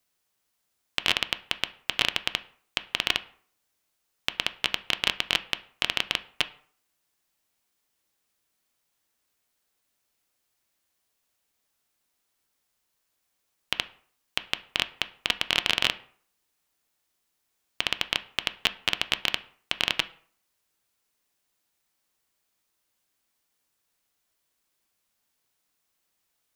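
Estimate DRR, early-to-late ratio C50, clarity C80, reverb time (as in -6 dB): 11.0 dB, 18.0 dB, 21.5 dB, 0.55 s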